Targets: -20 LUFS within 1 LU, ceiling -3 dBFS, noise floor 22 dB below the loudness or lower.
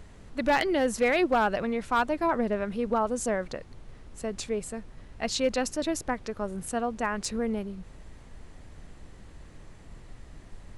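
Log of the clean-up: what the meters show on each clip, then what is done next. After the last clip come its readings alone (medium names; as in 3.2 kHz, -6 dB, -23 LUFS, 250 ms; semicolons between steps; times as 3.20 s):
clipped samples 0.3%; clipping level -17.0 dBFS; noise floor -49 dBFS; noise floor target -51 dBFS; loudness -28.5 LUFS; peak level -17.0 dBFS; loudness target -20.0 LUFS
-> clip repair -17 dBFS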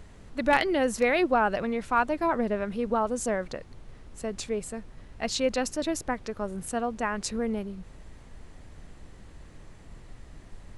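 clipped samples 0.0%; noise floor -49 dBFS; noise floor target -51 dBFS
-> noise print and reduce 6 dB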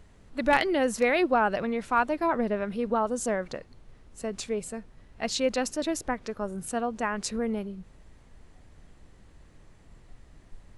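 noise floor -55 dBFS; loudness -28.5 LUFS; peak level -8.0 dBFS; loudness target -20.0 LUFS
-> trim +8.5 dB; peak limiter -3 dBFS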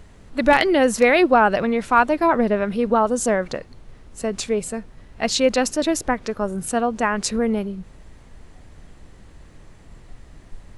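loudness -20.0 LUFS; peak level -3.0 dBFS; noise floor -47 dBFS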